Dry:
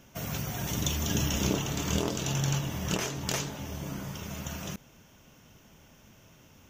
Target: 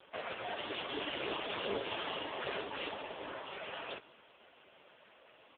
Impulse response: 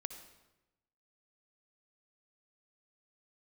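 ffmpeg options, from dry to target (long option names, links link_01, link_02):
-filter_complex "[0:a]highpass=frequency=380:width=0.5412,highpass=frequency=380:width=1.3066,aeval=exprs='0.0282*(abs(mod(val(0)/0.0282+3,4)-2)-1)':channel_layout=same,atempo=1.2,asplit=2[link_01][link_02];[1:a]atrim=start_sample=2205[link_03];[link_02][link_03]afir=irnorm=-1:irlink=0,volume=-7dB[link_04];[link_01][link_04]amix=inputs=2:normalize=0,volume=4dB" -ar 8000 -c:a libopencore_amrnb -b:a 5150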